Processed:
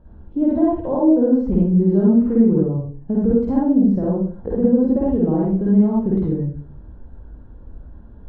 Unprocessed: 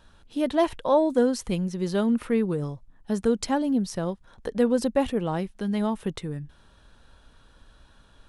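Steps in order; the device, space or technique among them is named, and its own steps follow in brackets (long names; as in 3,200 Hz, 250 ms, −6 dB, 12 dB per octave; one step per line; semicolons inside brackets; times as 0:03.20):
television next door (downward compressor 4 to 1, threshold −26 dBFS, peak gain reduction 9.5 dB; low-pass filter 440 Hz 12 dB per octave; convolution reverb RT60 0.50 s, pre-delay 44 ms, DRR −6 dB)
level +8.5 dB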